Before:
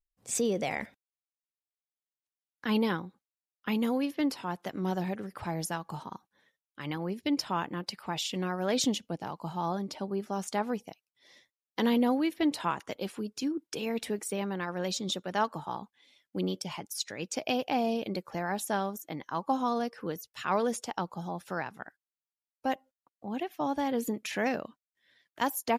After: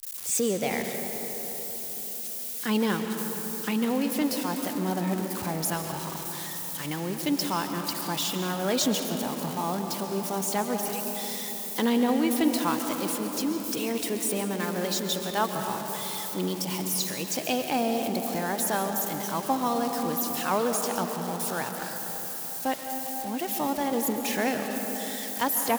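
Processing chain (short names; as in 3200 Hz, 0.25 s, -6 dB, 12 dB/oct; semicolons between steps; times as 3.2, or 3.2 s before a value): switching spikes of -28.5 dBFS; digital reverb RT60 4.5 s, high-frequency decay 0.35×, pre-delay 95 ms, DRR 4.5 dB; gain +2 dB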